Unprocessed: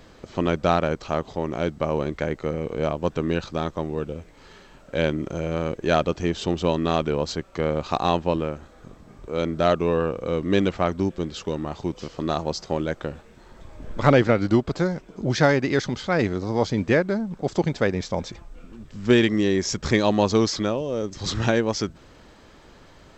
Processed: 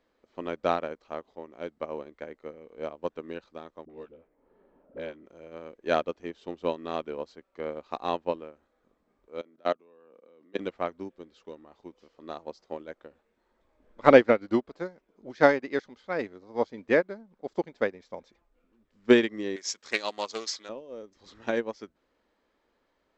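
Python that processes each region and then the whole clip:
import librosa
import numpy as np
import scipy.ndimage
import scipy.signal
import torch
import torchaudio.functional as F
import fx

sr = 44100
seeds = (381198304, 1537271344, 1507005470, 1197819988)

y = fx.chain(x, sr, fx.dispersion(late='highs', ms=44.0, hz=390.0),
    fx.env_lowpass(base_hz=500.0, full_db=-19.5),
    fx.band_squash(depth_pct=70), at=(3.85, 5.26))
y = fx.chain(y, sr, fx.highpass(hz=170.0, slope=24),
    fx.level_steps(step_db=18), at=(9.41, 10.59))
y = fx.chain(y, sr, fx.tilt_eq(slope=4.5),
    fx.doppler_dist(depth_ms=0.18), at=(19.56, 20.69))
y = fx.graphic_eq_10(y, sr, hz=(125, 250, 500, 1000, 2000, 4000), db=(-9, 7, 8, 6, 7, 4))
y = fx.upward_expand(y, sr, threshold_db=-21.0, expansion=2.5)
y = y * 10.0 ** (-5.5 / 20.0)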